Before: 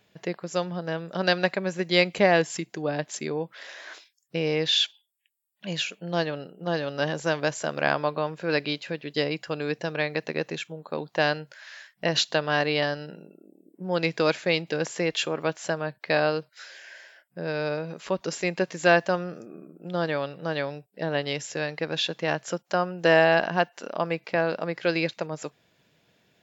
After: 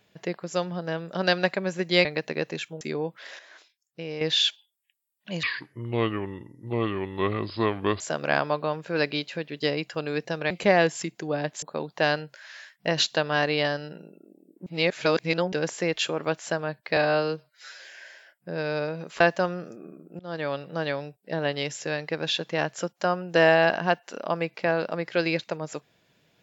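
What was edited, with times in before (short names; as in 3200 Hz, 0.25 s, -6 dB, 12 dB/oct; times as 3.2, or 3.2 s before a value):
2.05–3.17 swap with 10.04–10.8
3.75–4.57 gain -8.5 dB
5.79–7.54 speed 68%
13.84–14.7 reverse
16.14–16.7 stretch 1.5×
18.1–18.9 cut
19.89–20.22 fade in, from -23 dB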